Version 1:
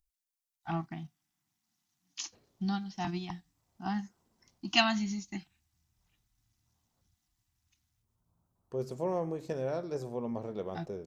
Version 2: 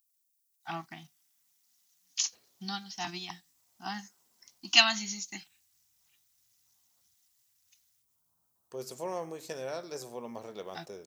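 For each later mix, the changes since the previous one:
master: add tilt EQ +4 dB/octave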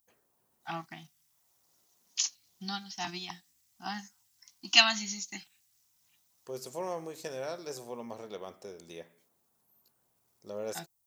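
second voice: entry -2.25 s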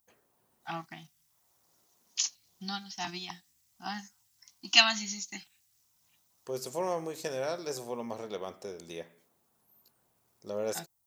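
second voice +4.0 dB

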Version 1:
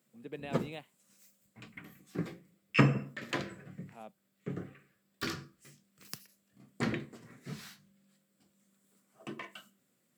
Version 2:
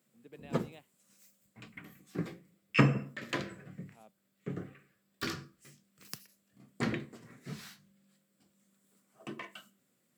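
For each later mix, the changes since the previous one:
speech -9.5 dB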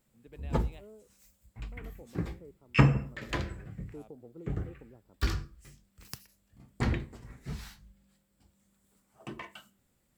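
second voice: unmuted; background: add peaking EQ 870 Hz +10.5 dB 0.21 oct; master: remove high-pass 150 Hz 24 dB/octave

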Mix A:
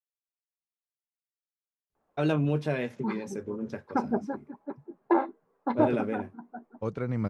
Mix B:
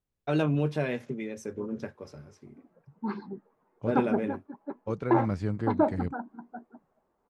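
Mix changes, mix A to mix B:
first voice: entry -1.90 s; second voice: entry -1.95 s

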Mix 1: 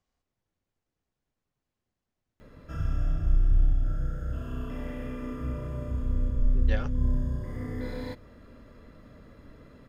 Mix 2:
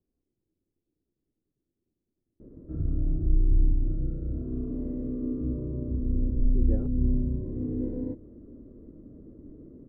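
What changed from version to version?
master: add resonant low-pass 340 Hz, resonance Q 3.7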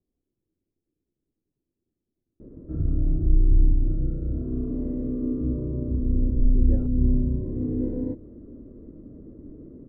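background +4.0 dB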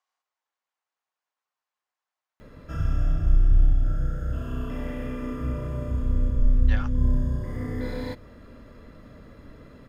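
speech: add resonant high-pass 970 Hz, resonance Q 1.7; master: remove resonant low-pass 340 Hz, resonance Q 3.7

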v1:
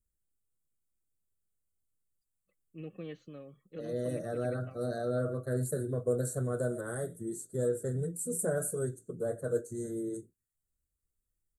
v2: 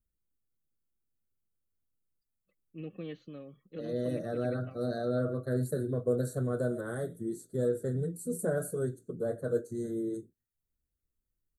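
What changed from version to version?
master: add graphic EQ 250/4000/8000 Hz +4/+6/-10 dB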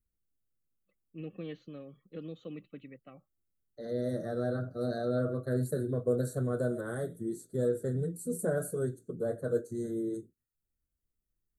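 first voice: entry -1.60 s

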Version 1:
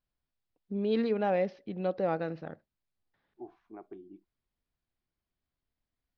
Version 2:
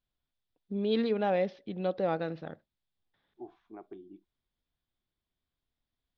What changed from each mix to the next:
master: add peaking EQ 3.5 kHz +9.5 dB 0.31 oct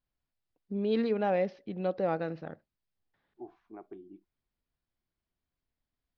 master: add peaking EQ 3.5 kHz -9.5 dB 0.31 oct

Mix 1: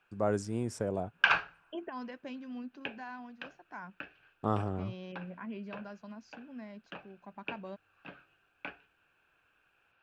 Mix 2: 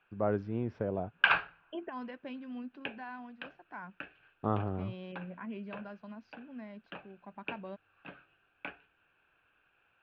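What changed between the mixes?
first voice: add distance through air 230 m; master: add low-pass 3.8 kHz 24 dB/octave

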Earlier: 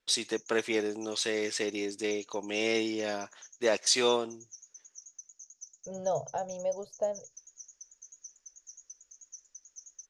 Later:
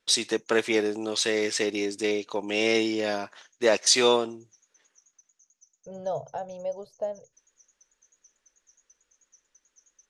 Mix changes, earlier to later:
first voice +5.5 dB; background -11.5 dB

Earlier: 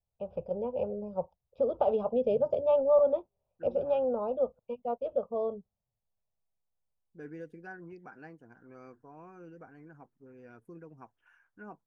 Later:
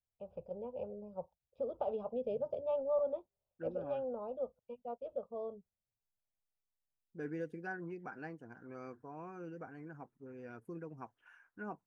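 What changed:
first voice -10.0 dB; second voice +3.0 dB

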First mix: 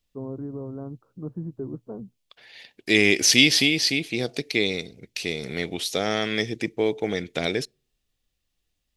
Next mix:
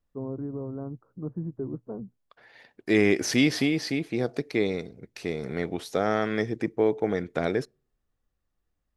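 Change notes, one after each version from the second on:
second voice: add resonant high shelf 2 kHz -11.5 dB, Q 1.5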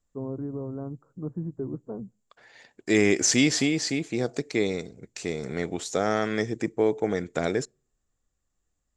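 first voice: send on; master: add resonant low-pass 7.3 kHz, resonance Q 9.6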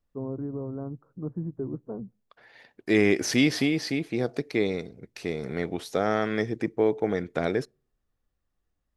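master: remove resonant low-pass 7.3 kHz, resonance Q 9.6

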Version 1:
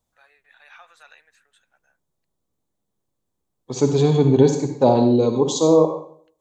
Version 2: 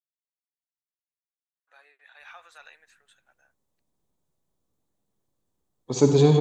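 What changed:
first voice: entry +1.55 s; second voice: entry +2.20 s

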